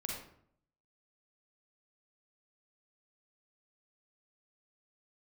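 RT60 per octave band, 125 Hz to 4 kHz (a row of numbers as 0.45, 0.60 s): 0.85, 0.75, 0.65, 0.60, 0.50, 0.40 s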